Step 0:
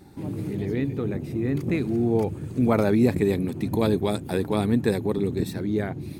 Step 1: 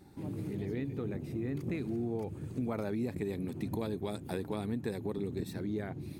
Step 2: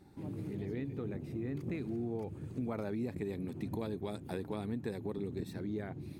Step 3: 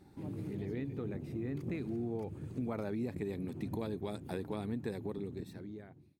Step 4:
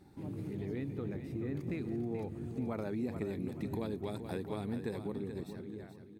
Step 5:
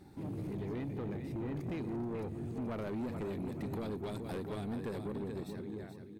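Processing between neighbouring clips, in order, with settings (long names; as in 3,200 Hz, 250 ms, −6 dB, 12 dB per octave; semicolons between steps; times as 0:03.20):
downward compressor 5 to 1, threshold −24 dBFS, peak gain reduction 9 dB; level −7.5 dB
high-shelf EQ 5,700 Hz −5 dB; level −2.5 dB
fade-out on the ending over 1.22 s
repeating echo 430 ms, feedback 33%, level −9 dB
soft clipping −37.5 dBFS, distortion −10 dB; level +3.5 dB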